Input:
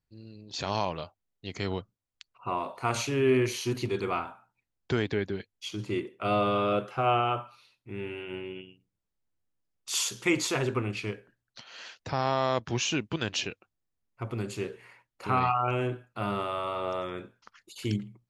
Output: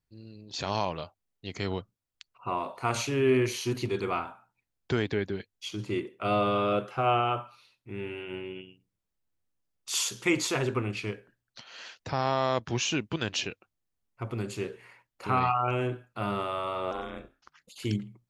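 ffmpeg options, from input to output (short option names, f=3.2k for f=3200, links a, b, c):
-filter_complex "[0:a]asettb=1/sr,asplit=3[a][b][c];[a]atrim=end=16.914[d];[b]atrim=start=16.91:end=17.8,asetpts=PTS-STARTPTS,afade=t=in:d=0.004:c=qsin,afade=t=out:st=0.886:d=0.004:c=qsin,aeval=exprs='val(0)*sin(2*PI*150*n/s)':c=same[e];[c]atrim=start=17.796[f];[d][e]acrossfade=d=0.004:c1=hsin:c2=qsin[g];[g][f]acrossfade=d=0.004:c1=qsin:c2=hsin"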